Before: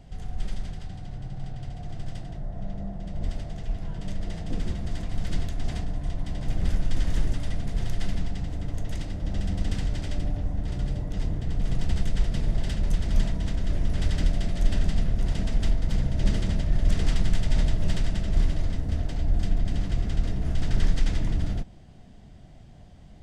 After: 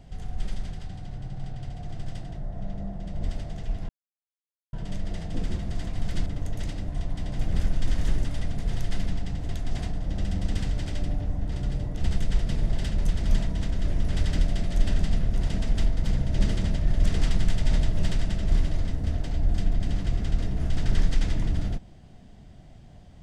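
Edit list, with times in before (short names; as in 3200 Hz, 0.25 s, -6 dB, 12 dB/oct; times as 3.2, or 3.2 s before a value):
3.89 insert silence 0.84 s
5.42–5.97 swap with 8.58–9.2
11.16–11.85 cut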